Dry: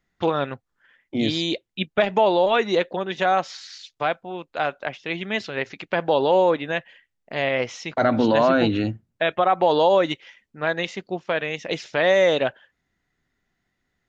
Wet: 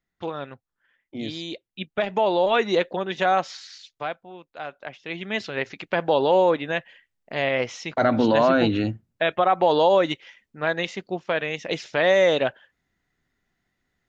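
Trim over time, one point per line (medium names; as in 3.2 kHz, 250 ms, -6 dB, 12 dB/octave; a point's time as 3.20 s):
1.50 s -9 dB
2.58 s -0.5 dB
3.50 s -0.5 dB
4.54 s -11.5 dB
5.44 s -0.5 dB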